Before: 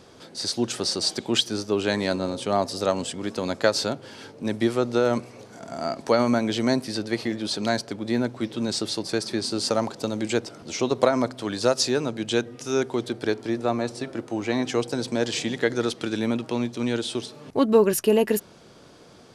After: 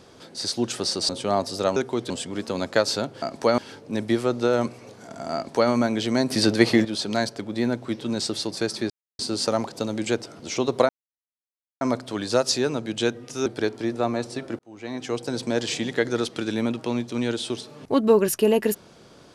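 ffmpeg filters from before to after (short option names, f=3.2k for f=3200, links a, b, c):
-filter_complex "[0:a]asplit=12[a][b][c][d][e][f][g][h][i][j][k][l];[a]atrim=end=1.092[m];[b]atrim=start=2.308:end=2.982[n];[c]atrim=start=12.768:end=13.112[o];[d]atrim=start=2.978:end=4.102[p];[e]atrim=start=5.868:end=6.232[q];[f]atrim=start=4.098:end=6.822[r];[g]atrim=start=6.818:end=7.372,asetpts=PTS-STARTPTS,volume=9dB[s];[h]atrim=start=7.368:end=9.42,asetpts=PTS-STARTPTS,afade=t=out:st=2.048:d=0.004:c=hsin,apad=pad_dur=0.29[t];[i]atrim=start=9.42:end=11.12,asetpts=PTS-STARTPTS,afade=t=in:d=0.004:c=hsin,afade=t=out:st=1.696:d=0.004:c=hsin,apad=pad_dur=0.92[u];[j]atrim=start=11.12:end=12.772,asetpts=PTS-STARTPTS,afade=t=in:d=0.004:c=hsin[v];[k]atrim=start=13.108:end=14.24,asetpts=PTS-STARTPTS,afade=t=out:st=1.128:d=0.004:c=hsin[w];[l]atrim=start=14.24,asetpts=PTS-STARTPTS,afade=t=in:d=0.81[x];[m][n]acrossfade=d=0.004:c1=hsin:c2=hsin[y];[y][o]acrossfade=d=0.004:c1=hsin:c2=hsin[z];[z][p]acrossfade=d=0.004:c1=hsin:c2=hsin[aa];[aa][q]acrossfade=d=0.004:c1=hsin:c2=hsin[ab];[ab][r]acrossfade=d=0.004:c1=hsin:c2=hsin[ac];[ac][s]acrossfade=d=0.004:c1=hsin:c2=hsin[ad];[t][u][v]concat=n=3:v=0:a=1[ae];[ad][ae]acrossfade=d=0.004:c1=hsin:c2=hsin[af];[w][x]concat=n=2:v=0:a=1[ag];[af][ag]acrossfade=d=0.004:c1=hsin:c2=hsin"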